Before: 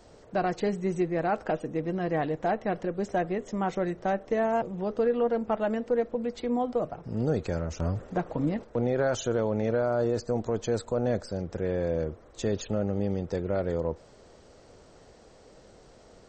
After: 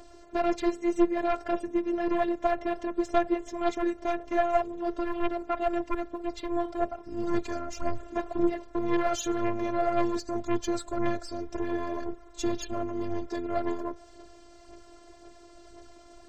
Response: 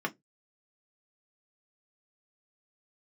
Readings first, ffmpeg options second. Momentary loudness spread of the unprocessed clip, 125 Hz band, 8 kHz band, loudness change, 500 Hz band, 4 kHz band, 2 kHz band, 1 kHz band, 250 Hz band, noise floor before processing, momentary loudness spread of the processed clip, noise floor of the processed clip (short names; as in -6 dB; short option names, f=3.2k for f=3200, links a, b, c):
5 LU, -12.0 dB, +2.0 dB, -1.0 dB, -2.5 dB, +2.0 dB, -0.5 dB, +1.5 dB, +1.0 dB, -55 dBFS, 8 LU, -52 dBFS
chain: -af "aphaser=in_gain=1:out_gain=1:delay=3.8:decay=0.48:speed=1.9:type=sinusoidal,aeval=exprs='0.282*(cos(1*acos(clip(val(0)/0.282,-1,1)))-cos(1*PI/2))+0.0158*(cos(2*acos(clip(val(0)/0.282,-1,1)))-cos(2*PI/2))+0.0562*(cos(4*acos(clip(val(0)/0.282,-1,1)))-cos(4*PI/2))+0.0355*(cos(5*acos(clip(val(0)/0.282,-1,1)))-cos(5*PI/2))':c=same,afftfilt=real='hypot(re,im)*cos(PI*b)':imag='0':win_size=512:overlap=0.75"